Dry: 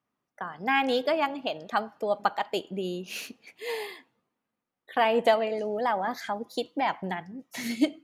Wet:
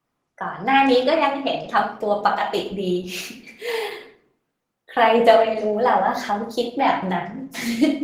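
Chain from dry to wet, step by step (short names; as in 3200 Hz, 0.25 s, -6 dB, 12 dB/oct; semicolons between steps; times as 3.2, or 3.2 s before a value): 4.94–7.23 low shelf 82 Hz +5.5 dB; shoebox room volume 84 m³, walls mixed, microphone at 0.74 m; gain +5.5 dB; Opus 16 kbps 48000 Hz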